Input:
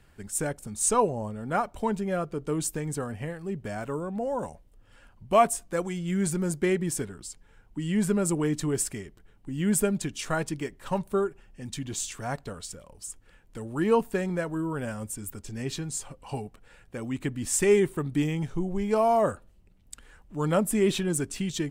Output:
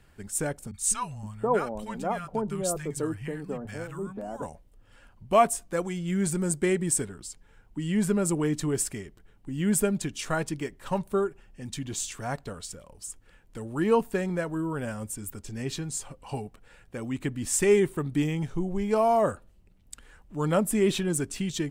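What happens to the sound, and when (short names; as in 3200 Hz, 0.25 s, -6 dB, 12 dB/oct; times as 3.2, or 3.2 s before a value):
0.71–4.42 three bands offset in time lows, highs, mids 30/520 ms, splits 170/1100 Hz
6.32–7.07 bell 8300 Hz +10.5 dB 0.29 oct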